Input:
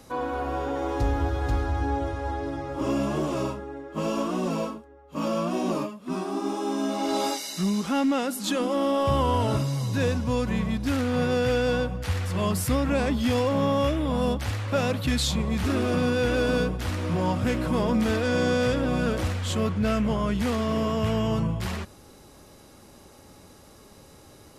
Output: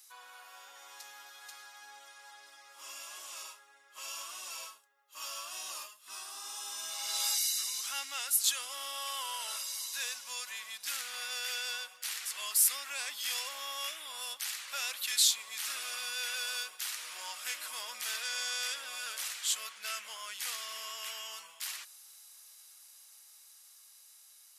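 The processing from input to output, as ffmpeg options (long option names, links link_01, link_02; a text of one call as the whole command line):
ffmpeg -i in.wav -filter_complex "[0:a]asettb=1/sr,asplit=3[link_01][link_02][link_03];[link_01]atrim=end=4.724[link_04];[link_02]atrim=start=4.72:end=6.75,asetpts=PTS-STARTPTS,afade=type=in:duration=0.004:curve=qsin,afade=type=out:start_time=2.026:duration=0.004:curve=qsin,bandreject=frequency=2300:width=12[link_05];[link_03]atrim=start=6.746[link_06];[link_04][link_05]acrossfade=duration=0.004:curve1=hsin:curve2=qsin[link_07];[link_07][link_06]acrossfade=duration=0.004:curve1=qsin:curve2=hsin,highpass=1100,aderivative,dynaudnorm=framelen=870:gausssize=9:maxgain=6dB" out.wav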